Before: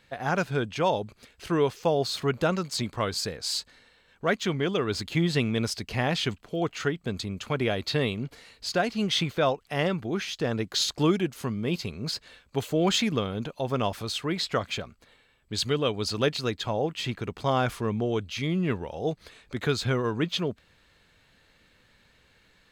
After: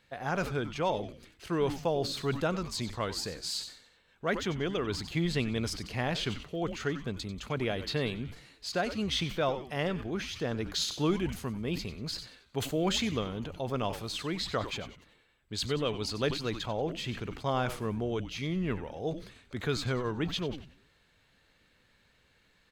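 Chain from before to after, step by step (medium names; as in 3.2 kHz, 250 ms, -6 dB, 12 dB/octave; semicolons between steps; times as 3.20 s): frequency-shifting echo 93 ms, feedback 42%, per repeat -140 Hz, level -14 dB; decay stretcher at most 110 dB/s; trim -5.5 dB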